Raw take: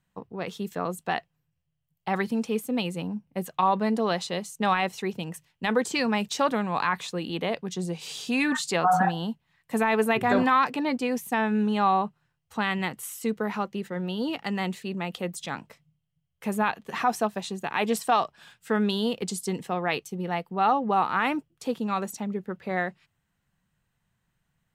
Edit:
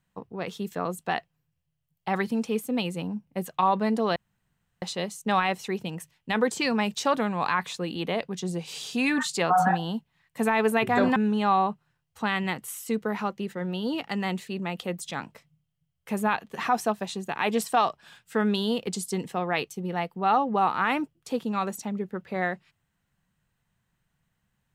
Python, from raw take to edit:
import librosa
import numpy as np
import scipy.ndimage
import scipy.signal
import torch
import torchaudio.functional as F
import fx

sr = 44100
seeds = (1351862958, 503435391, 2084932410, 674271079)

y = fx.edit(x, sr, fx.insert_room_tone(at_s=4.16, length_s=0.66),
    fx.cut(start_s=10.5, length_s=1.01), tone=tone)